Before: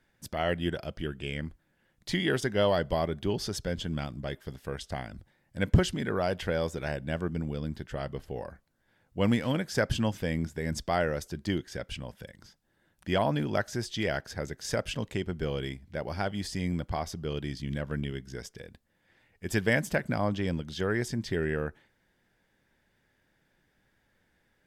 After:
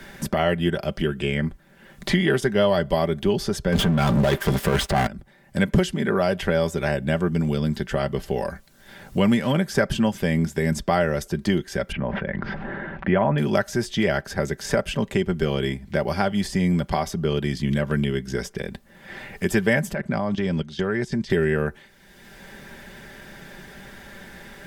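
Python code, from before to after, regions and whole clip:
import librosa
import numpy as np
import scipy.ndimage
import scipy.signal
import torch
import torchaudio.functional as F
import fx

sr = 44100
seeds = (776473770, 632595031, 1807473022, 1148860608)

y = fx.chain(x, sr, fx.over_compress(threshold_db=-36.0, ratio=-0.5),
    fx.leveller(passes=5), at=(3.72, 5.07))
y = fx.chain(y, sr, fx.lowpass(hz=2100.0, slope=24),
    fx.sustainer(db_per_s=22.0), at=(11.92, 13.38))
y = fx.chain(y, sr, fx.level_steps(step_db=18),
    fx.air_absorb(metres=56.0), at=(19.93, 21.3))
y = fx.dynamic_eq(y, sr, hz=4800.0, q=0.88, threshold_db=-52.0, ratio=4.0, max_db=-4)
y = y + 0.52 * np.pad(y, (int(5.1 * sr / 1000.0), 0))[:len(y)]
y = fx.band_squash(y, sr, depth_pct=70)
y = y * 10.0 ** (7.0 / 20.0)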